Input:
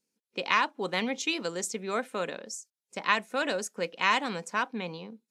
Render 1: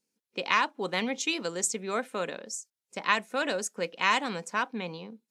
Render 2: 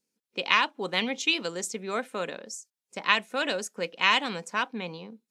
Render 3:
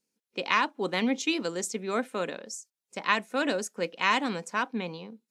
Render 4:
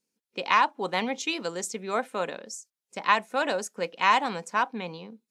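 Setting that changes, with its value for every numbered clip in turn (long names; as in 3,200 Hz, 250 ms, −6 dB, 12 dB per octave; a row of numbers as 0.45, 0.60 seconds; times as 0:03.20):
dynamic equaliser, frequency: 7,800, 3,100, 280, 840 Hertz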